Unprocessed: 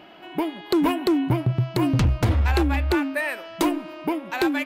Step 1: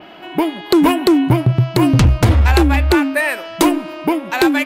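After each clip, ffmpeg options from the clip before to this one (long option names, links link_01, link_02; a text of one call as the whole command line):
ffmpeg -i in.wav -af "adynamicequalizer=threshold=0.00398:dfrequency=9000:dqfactor=0.77:tfrequency=9000:tqfactor=0.77:attack=5:release=100:ratio=0.375:range=2:mode=boostabove:tftype=bell,volume=8.5dB" out.wav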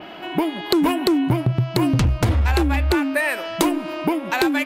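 ffmpeg -i in.wav -af "acompressor=threshold=-21dB:ratio=2.5,volume=1.5dB" out.wav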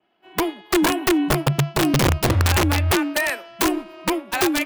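ffmpeg -i in.wav -af "afreqshift=17,aeval=exprs='(mod(3.76*val(0)+1,2)-1)/3.76':channel_layout=same,agate=range=-33dB:threshold=-19dB:ratio=3:detection=peak" out.wav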